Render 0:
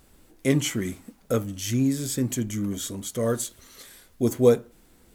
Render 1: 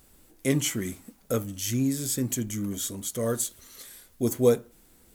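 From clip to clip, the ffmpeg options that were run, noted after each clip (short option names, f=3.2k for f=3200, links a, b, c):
-af "highshelf=f=6.8k:g=8.5,volume=-3dB"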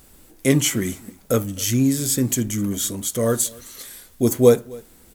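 -af "aecho=1:1:262:0.0668,volume=7.5dB"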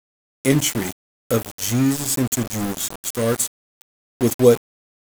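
-af "aeval=exprs='val(0)*gte(abs(val(0)),0.0708)':c=same"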